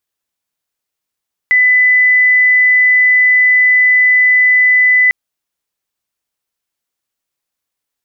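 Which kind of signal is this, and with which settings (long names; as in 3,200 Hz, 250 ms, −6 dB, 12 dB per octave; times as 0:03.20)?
tone sine 2,000 Hz −6 dBFS 3.60 s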